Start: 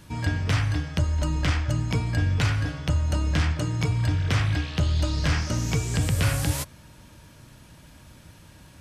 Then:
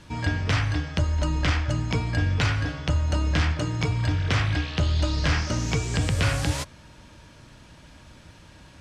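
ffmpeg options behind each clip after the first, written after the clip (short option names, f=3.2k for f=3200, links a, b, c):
-af "lowpass=6.5k,equalizer=f=130:w=0.79:g=-4,volume=2.5dB"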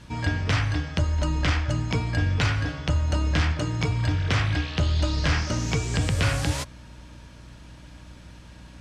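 -af "aeval=exprs='val(0)+0.00501*(sin(2*PI*60*n/s)+sin(2*PI*2*60*n/s)/2+sin(2*PI*3*60*n/s)/3+sin(2*PI*4*60*n/s)/4+sin(2*PI*5*60*n/s)/5)':c=same"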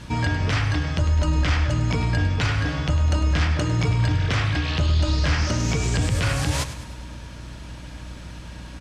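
-filter_complex "[0:a]alimiter=limit=-22dB:level=0:latency=1:release=99,asplit=2[a][b];[b]aecho=0:1:102|204|306|408|510:0.237|0.126|0.0666|0.0353|0.0187[c];[a][c]amix=inputs=2:normalize=0,volume=7.5dB"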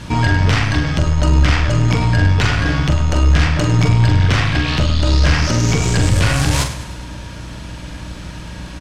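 -filter_complex "[0:a]aeval=exprs='(tanh(6.31*val(0)+0.45)-tanh(0.45))/6.31':c=same,asplit=2[a][b];[b]adelay=44,volume=-7dB[c];[a][c]amix=inputs=2:normalize=0,volume=9dB"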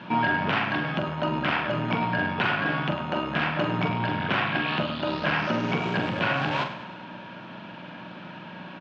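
-af "highpass=f=200:w=0.5412,highpass=f=200:w=1.3066,equalizer=f=290:t=q:w=4:g=-8,equalizer=f=460:t=q:w=4:g=-8,equalizer=f=2k:t=q:w=4:g=-8,lowpass=f=2.8k:w=0.5412,lowpass=f=2.8k:w=1.3066,bandreject=f=1.2k:w=15,volume=-1.5dB"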